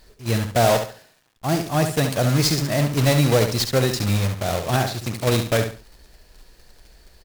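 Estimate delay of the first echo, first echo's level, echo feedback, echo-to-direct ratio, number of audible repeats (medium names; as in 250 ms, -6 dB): 69 ms, -7.5 dB, 27%, -7.0 dB, 3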